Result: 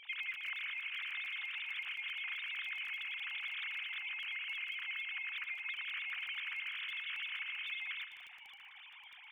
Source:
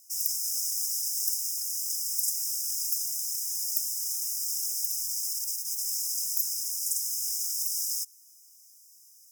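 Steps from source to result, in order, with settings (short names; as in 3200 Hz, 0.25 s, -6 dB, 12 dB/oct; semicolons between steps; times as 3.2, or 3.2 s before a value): sine-wave speech; compressor 5:1, threshold -42 dBFS, peak gain reduction 19.5 dB; crackle 16/s -46 dBFS; on a send: split-band echo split 2500 Hz, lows 0.16 s, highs 0.114 s, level -10.5 dB; on the sum: gain +1 dB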